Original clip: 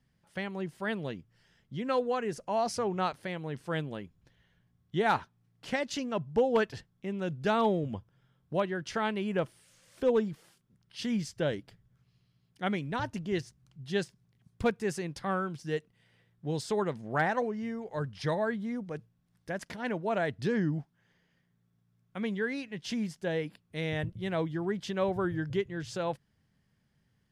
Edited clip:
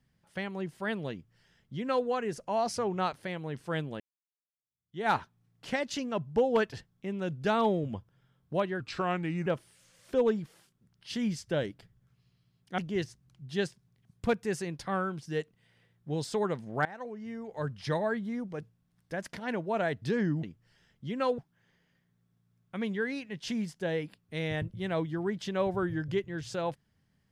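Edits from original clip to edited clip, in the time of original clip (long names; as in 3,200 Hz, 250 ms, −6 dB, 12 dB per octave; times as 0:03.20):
0:01.12–0:02.07: duplicate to 0:20.80
0:04.00–0:05.09: fade in exponential
0:08.80–0:09.35: play speed 83%
0:12.67–0:13.15: remove
0:17.22–0:18.01: fade in, from −20.5 dB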